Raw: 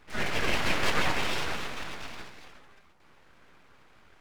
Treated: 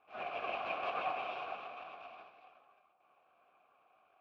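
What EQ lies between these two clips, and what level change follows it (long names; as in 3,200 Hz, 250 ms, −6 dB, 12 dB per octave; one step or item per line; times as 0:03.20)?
formant filter a
low-pass filter 3,400 Hz 12 dB per octave
+2.5 dB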